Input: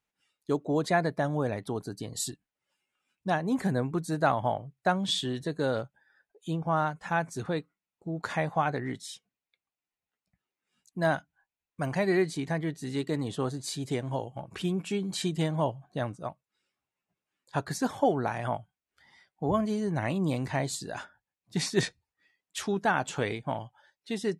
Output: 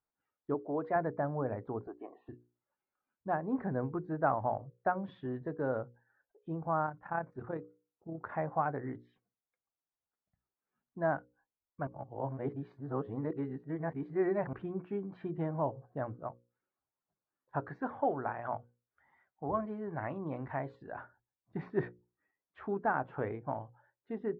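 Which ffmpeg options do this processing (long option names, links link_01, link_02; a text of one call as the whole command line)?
ffmpeg -i in.wav -filter_complex "[0:a]asettb=1/sr,asplit=3[link_01][link_02][link_03];[link_01]atrim=end=0.544[link_04];[link_02]atrim=start=0.54:end=0.96,asetpts=PTS-STARTPTS,afade=type=in:duration=0.004:curve=qsin,afade=type=out:start_time=0.416:duration=0.004:curve=qsin,highpass=frequency=300:poles=1[link_05];[link_03]atrim=start=0.956[link_06];[link_04][link_05]acrossfade=duration=0.004:curve1=hsin:curve2=qsin[link_07];[link_07][link_06]acrossfade=duration=0.004:curve1=qsin:curve2=hsin,asettb=1/sr,asplit=3[link_08][link_09][link_10];[link_08]atrim=end=1.874[link_11];[link_09]atrim=start=1.87:end=2.29,asetpts=PTS-STARTPTS,afade=type=in:duration=0.004:curve=qsin,afade=type=out:start_time=0.416:duration=0.004:curve=qsin,highpass=frequency=340:width=0.5412,highpass=frequency=340:width=1.3066,equalizer=frequency=340:width_type=q:width=4:gain=6,equalizer=frequency=490:width_type=q:width=4:gain=-5,equalizer=frequency=720:width_type=q:width=4:gain=9,equalizer=frequency=1100:width_type=q:width=4:gain=9,equalizer=frequency=1500:width_type=q:width=4:gain=-7,equalizer=frequency=2500:width_type=q:width=4:gain=10,lowpass=frequency=2800:width=0.5412,lowpass=frequency=2800:width=1.3066[link_12];[link_10]atrim=start=2.286[link_13];[link_11][link_12]acrossfade=duration=0.004:curve1=hsin:curve2=qsin[link_14];[link_14][link_13]acrossfade=duration=0.004:curve1=qsin:curve2=hsin,asplit=3[link_15][link_16][link_17];[link_15]afade=type=out:start_time=6.85:duration=0.02[link_18];[link_16]tremolo=f=34:d=0.519,afade=type=in:start_time=6.85:duration=0.02,afade=type=out:start_time=8.31:duration=0.02[link_19];[link_17]afade=type=in:start_time=8.31:duration=0.02[link_20];[link_18][link_19][link_20]amix=inputs=3:normalize=0,asettb=1/sr,asplit=3[link_21][link_22][link_23];[link_21]atrim=end=17.604[link_24];[link_22]atrim=start=17.6:end=20.92,asetpts=PTS-STARTPTS,afade=type=in:duration=0.004:curve=qsin,afade=type=out:start_time=3.316:duration=0.004:curve=qsin,tiltshelf=frequency=910:gain=-4.5[link_25];[link_23]atrim=start=20.916[link_26];[link_24][link_25]acrossfade=duration=0.004:curve1=hsin:curve2=qsin[link_27];[link_27][link_26]acrossfade=duration=0.004:curve1=qsin:curve2=hsin,asplit=3[link_28][link_29][link_30];[link_28]atrim=end=11.872[link_31];[link_29]atrim=start=11.868:end=14.532,asetpts=PTS-STARTPTS,areverse[link_32];[link_30]atrim=start=14.528[link_33];[link_31][link_32]acrossfade=duration=0.004:curve1=hsin:curve2=hsin[link_34];[link_34][link_33]acrossfade=duration=0.004:curve1=hsin:curve2=hsin,lowpass=frequency=1500:width=0.5412,lowpass=frequency=1500:width=1.3066,equalizer=frequency=180:width_type=o:width=0.48:gain=-5.5,bandreject=frequency=60:width_type=h:width=6,bandreject=frequency=120:width_type=h:width=6,bandreject=frequency=180:width_type=h:width=6,bandreject=frequency=240:width_type=h:width=6,bandreject=frequency=300:width_type=h:width=6,bandreject=frequency=360:width_type=h:width=6,bandreject=frequency=420:width_type=h:width=6,bandreject=frequency=480:width_type=h:width=6,bandreject=frequency=540:width_type=h:width=6,volume=-4dB" out.wav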